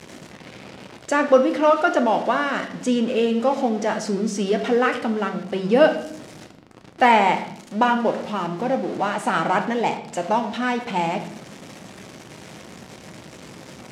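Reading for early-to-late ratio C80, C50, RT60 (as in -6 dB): 13.0 dB, 10.0 dB, 0.75 s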